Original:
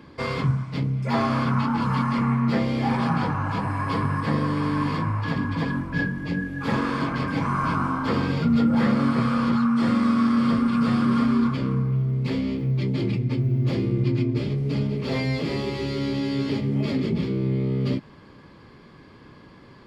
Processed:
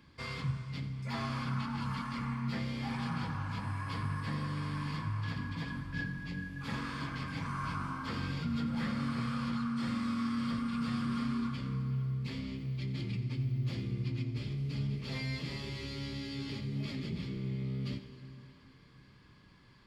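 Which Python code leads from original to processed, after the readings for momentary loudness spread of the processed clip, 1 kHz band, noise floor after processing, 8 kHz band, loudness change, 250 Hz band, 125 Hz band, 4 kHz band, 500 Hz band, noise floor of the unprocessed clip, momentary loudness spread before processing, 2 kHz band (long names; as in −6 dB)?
5 LU, −14.0 dB, −59 dBFS, can't be measured, −13.0 dB, −14.5 dB, −11.0 dB, −7.5 dB, −19.0 dB, −48 dBFS, 6 LU, −10.5 dB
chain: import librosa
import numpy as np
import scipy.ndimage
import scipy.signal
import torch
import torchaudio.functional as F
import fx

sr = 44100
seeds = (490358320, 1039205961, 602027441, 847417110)

y = fx.peak_eq(x, sr, hz=470.0, db=-13.5, octaves=2.9)
y = y + 10.0 ** (-14.0 / 20.0) * np.pad(y, (int(87 * sr / 1000.0), 0))[:len(y)]
y = fx.rev_plate(y, sr, seeds[0], rt60_s=3.6, hf_ratio=0.8, predelay_ms=105, drr_db=11.0)
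y = y * 10.0 ** (-6.5 / 20.0)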